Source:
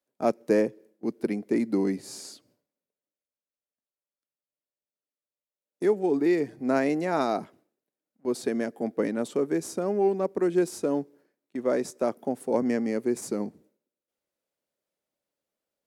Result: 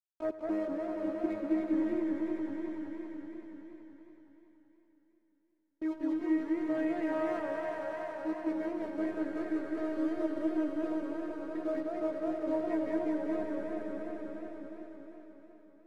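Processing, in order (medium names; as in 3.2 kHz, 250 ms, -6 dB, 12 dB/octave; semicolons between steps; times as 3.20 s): steep low-pass 2.6 kHz; in parallel at +2.5 dB: compression, threshold -35 dBFS, peak gain reduction 16 dB; on the sum: crossover distortion -37 dBFS; robot voice 315 Hz; saturation -17.5 dBFS, distortion -18 dB; on a send: echo with a slow build-up 94 ms, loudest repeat 5, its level -8 dB; on the sum: modulated delay 197 ms, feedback 59%, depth 198 cents, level -6 dB; trim -7.5 dB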